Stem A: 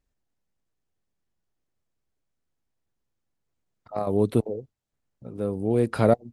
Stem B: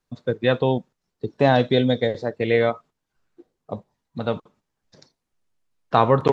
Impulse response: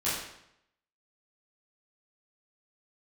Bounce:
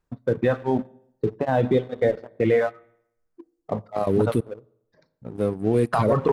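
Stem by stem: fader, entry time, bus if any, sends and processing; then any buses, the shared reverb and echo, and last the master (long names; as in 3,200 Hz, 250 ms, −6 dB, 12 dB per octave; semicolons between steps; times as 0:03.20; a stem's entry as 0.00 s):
+1.0 dB, 0.00 s, send −23.5 dB, no processing
+3.0 dB, 0.00 s, send −14.5 dB, low-pass filter 1,600 Hz 12 dB per octave; mains-hum notches 50/100/150/200/250 Hz; tremolo along a rectified sine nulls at 2.4 Hz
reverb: on, RT60 0.75 s, pre-delay 12 ms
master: reverb reduction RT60 1.5 s; leveller curve on the samples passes 1; brickwall limiter −11.5 dBFS, peak gain reduction 11 dB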